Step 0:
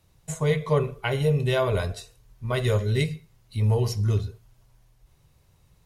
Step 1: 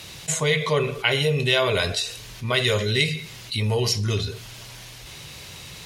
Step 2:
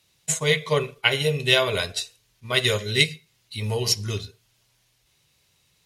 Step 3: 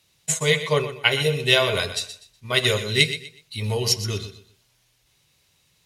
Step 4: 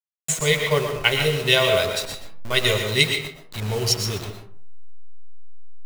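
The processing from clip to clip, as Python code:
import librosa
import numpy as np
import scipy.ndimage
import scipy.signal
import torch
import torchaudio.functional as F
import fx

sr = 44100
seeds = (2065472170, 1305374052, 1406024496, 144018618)

y1 = fx.weighting(x, sr, curve='D')
y1 = fx.env_flatten(y1, sr, amount_pct=50)
y2 = fx.high_shelf(y1, sr, hz=6600.0, db=6.5)
y2 = fx.upward_expand(y2, sr, threshold_db=-37.0, expansion=2.5)
y2 = y2 * librosa.db_to_amplitude(3.0)
y3 = fx.echo_feedback(y2, sr, ms=123, feedback_pct=27, wet_db=-12.0)
y3 = y3 * librosa.db_to_amplitude(1.0)
y4 = fx.delta_hold(y3, sr, step_db=-29.0)
y4 = fx.rev_freeverb(y4, sr, rt60_s=0.49, hf_ratio=0.55, predelay_ms=80, drr_db=5.5)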